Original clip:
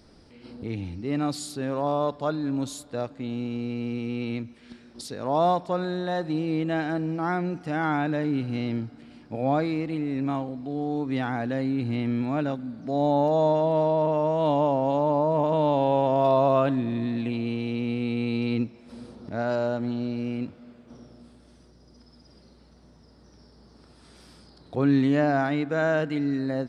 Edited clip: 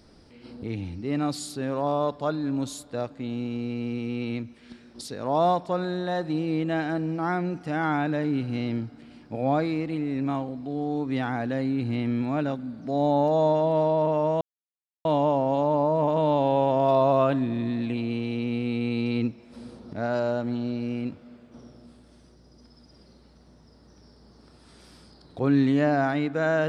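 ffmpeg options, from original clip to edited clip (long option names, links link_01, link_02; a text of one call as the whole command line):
ffmpeg -i in.wav -filter_complex "[0:a]asplit=2[link_01][link_02];[link_01]atrim=end=14.41,asetpts=PTS-STARTPTS,afade=type=out:start_time=14.406:duration=0.004:curve=hsin,apad=pad_dur=0.64[link_03];[link_02]atrim=start=14.41,asetpts=PTS-STARTPTS,afade=type=in:duration=0.004:curve=hsin[link_04];[link_03][link_04]concat=n=2:v=0:a=1" out.wav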